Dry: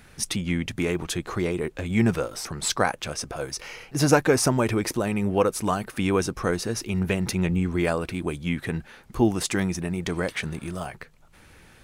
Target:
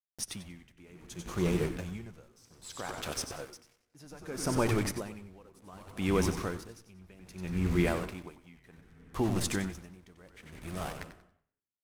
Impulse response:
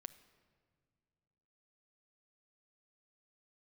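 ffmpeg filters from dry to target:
-filter_complex "[0:a]asettb=1/sr,asplit=3[a][b][c];[a]atrim=end=8.034[d];[b]atrim=start=8.03:end=9.2,asetpts=PTS-STARTPTS,afade=t=in:d=0.004:c=qsin,afade=t=out:st=1.166:d=0.004:c=qsin,equalizer=f=990:w=0.54:g=6[e];[c]atrim=start=9.196[f];[d][e]acrossfade=d=0.004:c1=hsin:c2=qsin[g];[g][f]acrossfade=d=0.004:c1=qsin:c2=hsin,alimiter=limit=-14dB:level=0:latency=1:release=374,asettb=1/sr,asplit=3[h][i][j];[h]atrim=end=0.914[k];[i]atrim=start=0.91:end=2.46,asetpts=PTS-STARTPTS,afade=t=in:d=0.004:c=qsin,afade=t=out:st=1.546:d=0.004:c=qsin,equalizer=f=160:t=o:w=0.33:g=7,equalizer=f=250:t=o:w=0.33:g=-4,equalizer=f=2k:t=o:w=0.33:g=-6,equalizer=f=6.3k:t=o:w=0.33:g=7[l];[j]atrim=start=2.456[m];[k][l]acrossfade=d=0.004:c1=hsin:c2=qsin[n];[n][m]acrossfade=d=0.004:c1=qsin:c2=hsin,aeval=exprs='val(0)*gte(abs(val(0)),0.0211)':c=same,asplit=6[o][p][q][r][s][t];[p]adelay=93,afreqshift=-120,volume=-8dB[u];[q]adelay=186,afreqshift=-240,volume=-15.5dB[v];[r]adelay=279,afreqshift=-360,volume=-23.1dB[w];[s]adelay=372,afreqshift=-480,volume=-30.6dB[x];[t]adelay=465,afreqshift=-600,volume=-38.1dB[y];[o][u][v][w][x][y]amix=inputs=6:normalize=0[z];[1:a]atrim=start_sample=2205,afade=t=out:st=0.4:d=0.01,atrim=end_sample=18081,asetrate=26901,aresample=44100[aa];[z][aa]afir=irnorm=-1:irlink=0,aeval=exprs='val(0)*pow(10,-27*(0.5-0.5*cos(2*PI*0.64*n/s))/20)':c=same"

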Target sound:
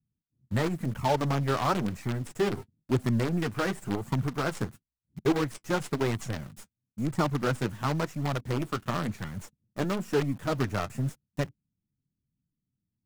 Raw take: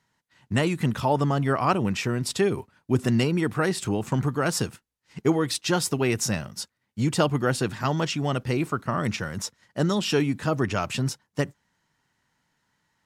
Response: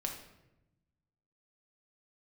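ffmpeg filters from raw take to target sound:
-filter_complex "[0:a]asuperstop=centerf=3700:order=4:qfactor=0.67,acrossover=split=280[a][b];[b]acrusher=bits=5:dc=4:mix=0:aa=0.000001[c];[a][c]amix=inputs=2:normalize=0,acrossover=split=6200[d][e];[e]acompressor=threshold=-42dB:ratio=4:attack=1:release=60[f];[d][f]amix=inputs=2:normalize=0,flanger=delay=0.9:depth=8.9:regen=-37:speed=0.97:shape=sinusoidal"

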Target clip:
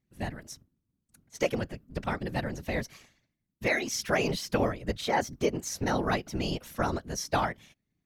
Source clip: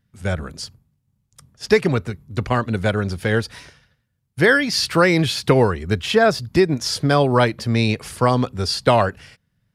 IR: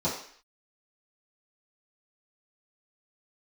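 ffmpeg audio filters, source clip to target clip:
-af "afftfilt=real='hypot(re,im)*cos(2*PI*random(0))':imag='hypot(re,im)*sin(2*PI*random(1))':win_size=512:overlap=0.75,asetrate=53361,aresample=44100,volume=-6dB"

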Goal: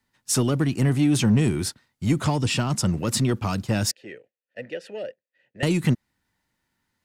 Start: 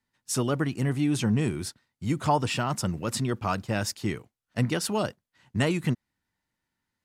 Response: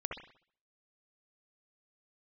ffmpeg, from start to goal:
-filter_complex "[0:a]asettb=1/sr,asplit=3[a][b][c];[a]atrim=end=2.244[d];[b]atrim=start=2.24:end=2.99,asetpts=PTS-STARTPTS,afade=t=in:d=0.004:c=qsin,afade=t=out:st=0.746:d=0.004:c=qsin,lowpass=11k[e];[c]atrim=start=2.986[f];[d][e]acrossfade=d=0.004:c1=hsin:c2=qsin[g];[g][f]acrossfade=d=0.004:c1=qsin:c2=hsin,asplit=2[h][i];[i]asoftclip=type=hard:threshold=-26dB,volume=-7.5dB[j];[h][j]amix=inputs=2:normalize=0,asettb=1/sr,asplit=3[k][l][m];[k]atrim=end=3.914[n];[l]atrim=start=3.91:end=5.63,asetpts=PTS-STARTPTS,afade=t=in:d=0.004:c=qsin,afade=t=out:st=1.716:d=0.004:c=qsin,asplit=3[o][p][q];[o]bandpass=f=530:t=q:w=8,volume=0dB[r];[p]bandpass=f=1.84k:t=q:w=8,volume=-6dB[s];[q]bandpass=f=2.48k:t=q:w=8,volume=-9dB[t];[r][s][t]amix=inputs=3:normalize=0[u];[m]atrim=start=5.626[v];[n][u]acrossfade=d=0.004:c1=hsin:c2=qsin[w];[w][v]acrossfade=d=0.004:c1=qsin:c2=hsin,acrossover=split=370|3000[x][y][z];[y]acompressor=threshold=-33dB:ratio=6[aa];[x][aa][z]amix=inputs=3:normalize=0,volume=4dB"

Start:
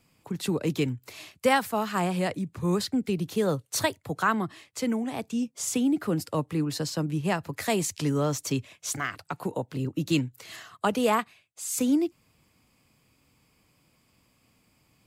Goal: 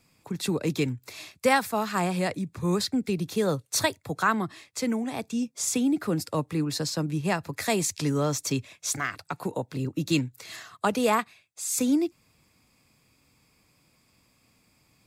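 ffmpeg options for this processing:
-af "equalizer=f=4.8k:w=0.47:g=3.5,bandreject=f=3k:w=8.7"

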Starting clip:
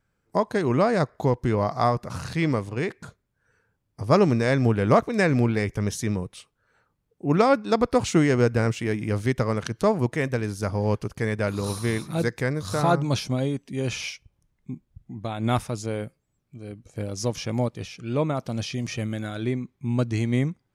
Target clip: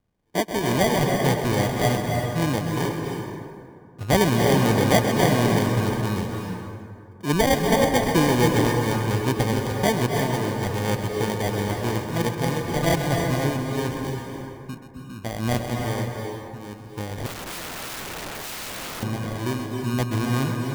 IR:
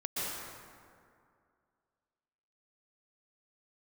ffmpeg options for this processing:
-filter_complex "[0:a]acrusher=samples=33:mix=1:aa=0.000001,asplit=2[a][b];[1:a]atrim=start_sample=2205,adelay=130[c];[b][c]afir=irnorm=-1:irlink=0,volume=-7dB[d];[a][d]amix=inputs=2:normalize=0,asettb=1/sr,asplit=3[e][f][g];[e]atrim=end=17.264[h];[f]atrim=start=17.26:end=19.03,asetpts=PTS-STARTPTS,afade=t=in:d=0.004:c=qsin,afade=t=out:st=1.766:d=0.004:c=qsin,aeval=exprs='(mod(25.1*val(0)+1,2)-1)/25.1':c=same[i];[g]atrim=start=19.026[j];[h][i]acrossfade=d=0.004:c1=hsin:c2=qsin[k];[k][j]acrossfade=d=0.004:c1=qsin:c2=hsin,volume=-1dB"

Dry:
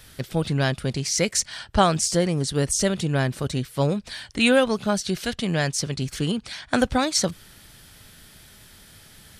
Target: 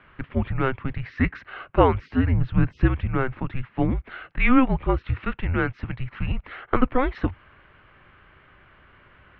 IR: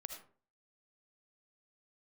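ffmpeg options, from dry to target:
-filter_complex "[0:a]asettb=1/sr,asplit=3[a][b][c];[a]atrim=end=2.294[d];[b]atrim=start=2.29:end=2.86,asetpts=PTS-STARTPTS,afade=t=in:d=0.004:c=qsin,afade=t=out:st=0.566:d=0.004:c=qsin,lowshelf=f=340:g=8[e];[c]atrim=start=2.856[f];[d][e]acrossfade=d=0.004:c1=hsin:c2=qsin[g];[g][f]acrossfade=d=0.004:c1=qsin:c2=hsin,highpass=f=170:t=q:w=0.5412,highpass=f=170:t=q:w=1.307,lowpass=f=2.6k:t=q:w=0.5176,lowpass=f=2.6k:t=q:w=0.7071,lowpass=f=2.6k:t=q:w=1.932,afreqshift=-260,volume=2dB"

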